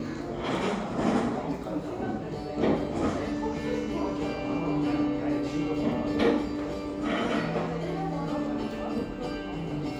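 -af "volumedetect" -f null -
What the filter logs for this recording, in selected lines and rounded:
mean_volume: -29.2 dB
max_volume: -11.4 dB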